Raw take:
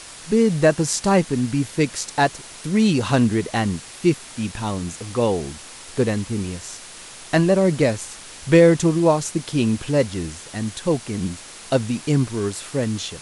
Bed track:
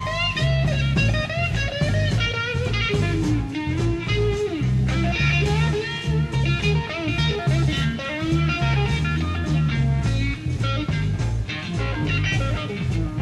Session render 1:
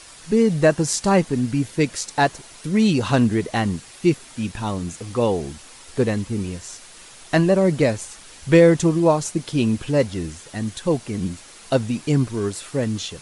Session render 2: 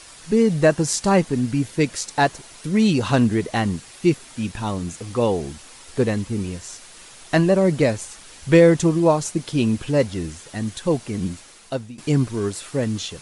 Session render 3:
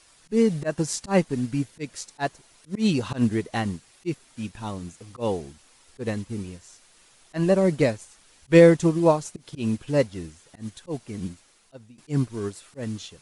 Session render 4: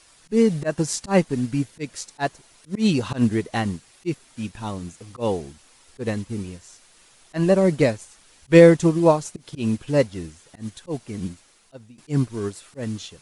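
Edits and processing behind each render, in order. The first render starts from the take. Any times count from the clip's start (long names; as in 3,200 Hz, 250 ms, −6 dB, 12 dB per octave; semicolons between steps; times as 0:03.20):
broadband denoise 6 dB, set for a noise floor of −40 dBFS
0:11.32–0:11.98: fade out, to −18 dB
volume swells 104 ms; expander for the loud parts 1.5 to 1, over −36 dBFS
level +2.5 dB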